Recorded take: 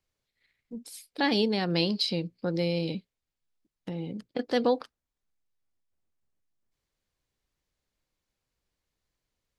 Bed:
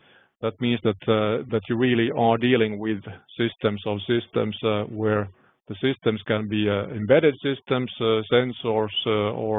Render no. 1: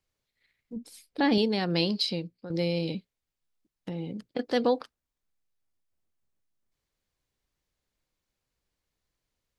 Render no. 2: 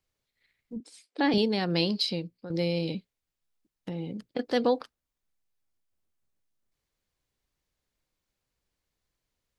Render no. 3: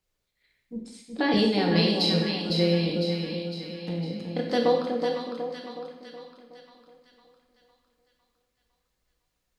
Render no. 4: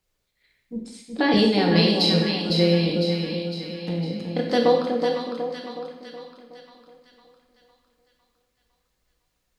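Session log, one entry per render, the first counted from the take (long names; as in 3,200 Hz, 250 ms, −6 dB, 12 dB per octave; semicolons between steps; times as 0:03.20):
0:00.76–0:01.38: spectral tilt −2 dB per octave; 0:02.04–0:02.50: fade out, to −13 dB
0:00.80–0:01.34: elliptic band-pass filter 280–8,500 Hz
echo with a time of its own for lows and highs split 1,000 Hz, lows 370 ms, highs 505 ms, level −5 dB; reverb whose tail is shaped and stops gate 270 ms falling, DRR 0 dB
level +4 dB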